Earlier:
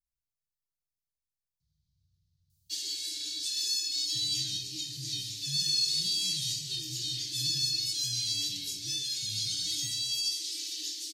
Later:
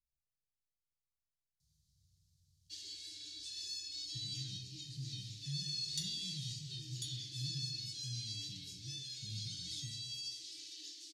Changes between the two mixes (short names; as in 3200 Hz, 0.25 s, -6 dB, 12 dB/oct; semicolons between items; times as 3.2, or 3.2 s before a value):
first sound -10.5 dB; second sound: remove air absorption 220 m; master: add air absorption 55 m